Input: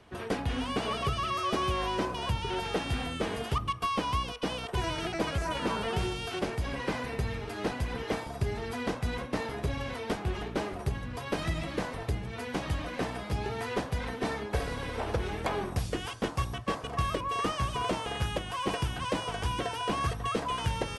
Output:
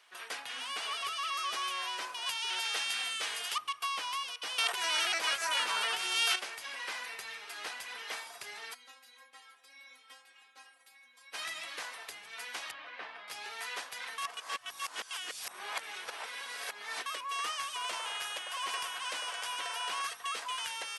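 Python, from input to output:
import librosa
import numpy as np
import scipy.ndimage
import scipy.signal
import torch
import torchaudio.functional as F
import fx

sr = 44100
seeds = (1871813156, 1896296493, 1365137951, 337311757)

y = fx.peak_eq(x, sr, hz=6100.0, db=6.0, octaves=2.8, at=(2.26, 3.58))
y = fx.env_flatten(y, sr, amount_pct=100, at=(4.58, 6.36))
y = fx.stiff_resonator(y, sr, f0_hz=260.0, decay_s=0.3, stiffness=0.002, at=(8.73, 11.33), fade=0.02)
y = fx.air_absorb(y, sr, metres=330.0, at=(12.71, 13.28))
y = fx.echo_wet_bandpass(y, sr, ms=101, feedback_pct=60, hz=900.0, wet_db=-3.5, at=(17.83, 20.02))
y = fx.edit(y, sr, fx.reverse_span(start_s=14.18, length_s=2.88), tone=tone)
y = scipy.signal.sosfilt(scipy.signal.butter(2, 1400.0, 'highpass', fs=sr, output='sos'), y)
y = fx.high_shelf(y, sr, hz=5300.0, db=5.0)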